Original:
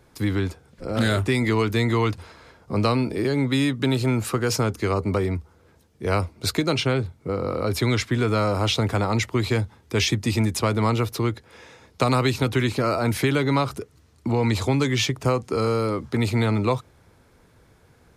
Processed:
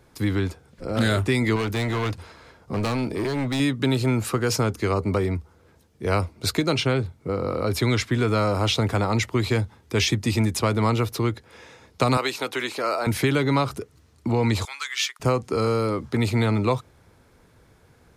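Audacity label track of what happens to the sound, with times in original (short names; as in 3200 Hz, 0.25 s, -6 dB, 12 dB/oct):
1.560000	3.600000	hard clip -22 dBFS
12.170000	13.070000	HPF 470 Hz
14.650000	15.200000	Chebyshev high-pass 1300 Hz, order 3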